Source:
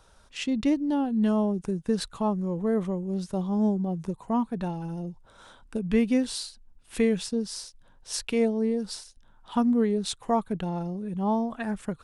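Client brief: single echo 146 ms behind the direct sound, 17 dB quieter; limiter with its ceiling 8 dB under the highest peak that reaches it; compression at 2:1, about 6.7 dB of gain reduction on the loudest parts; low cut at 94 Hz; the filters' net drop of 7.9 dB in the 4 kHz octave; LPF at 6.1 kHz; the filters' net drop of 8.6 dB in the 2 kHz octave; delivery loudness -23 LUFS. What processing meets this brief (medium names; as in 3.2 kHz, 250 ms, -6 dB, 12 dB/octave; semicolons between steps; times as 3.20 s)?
high-pass 94 Hz; low-pass 6.1 kHz; peaking EQ 2 kHz -9 dB; peaking EQ 4 kHz -6.5 dB; compression 2:1, threshold -32 dBFS; peak limiter -28.5 dBFS; delay 146 ms -17 dB; trim +13.5 dB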